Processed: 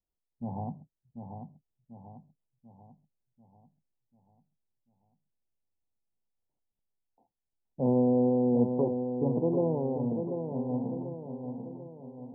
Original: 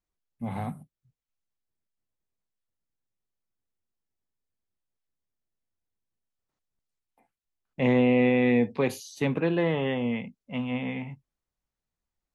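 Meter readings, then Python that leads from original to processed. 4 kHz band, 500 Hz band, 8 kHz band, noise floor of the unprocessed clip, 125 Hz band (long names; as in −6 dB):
below −40 dB, −2.0 dB, can't be measured, below −85 dBFS, −2.0 dB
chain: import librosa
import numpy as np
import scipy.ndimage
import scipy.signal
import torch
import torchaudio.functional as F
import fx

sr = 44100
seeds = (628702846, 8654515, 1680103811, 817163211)

y = scipy.signal.sosfilt(scipy.signal.butter(16, 980.0, 'lowpass', fs=sr, output='sos'), x)
y = fx.echo_feedback(y, sr, ms=741, feedback_pct=49, wet_db=-7.0)
y = F.gain(torch.from_numpy(y), -3.0).numpy()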